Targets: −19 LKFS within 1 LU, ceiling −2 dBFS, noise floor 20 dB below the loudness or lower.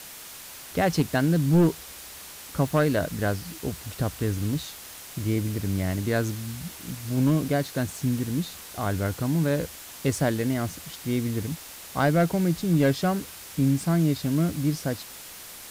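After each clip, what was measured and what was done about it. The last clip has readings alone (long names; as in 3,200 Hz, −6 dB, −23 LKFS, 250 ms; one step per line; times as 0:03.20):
share of clipped samples 0.4%; peaks flattened at −14.0 dBFS; background noise floor −43 dBFS; target noise floor −47 dBFS; integrated loudness −26.5 LKFS; sample peak −14.0 dBFS; target loudness −19.0 LKFS
→ clipped peaks rebuilt −14 dBFS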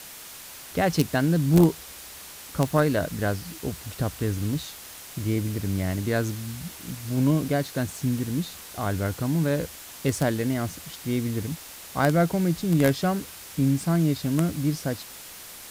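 share of clipped samples 0.0%; background noise floor −43 dBFS; target noise floor −46 dBFS
→ noise reduction from a noise print 6 dB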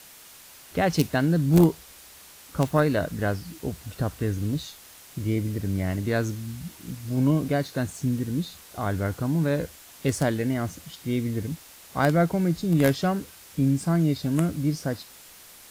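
background noise floor −49 dBFS; integrated loudness −26.0 LKFS; sample peak −5.0 dBFS; target loudness −19.0 LKFS
→ level +7 dB
brickwall limiter −2 dBFS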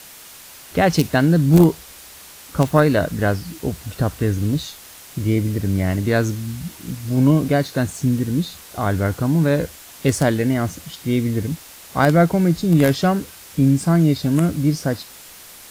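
integrated loudness −19.5 LKFS; sample peak −2.0 dBFS; background noise floor −42 dBFS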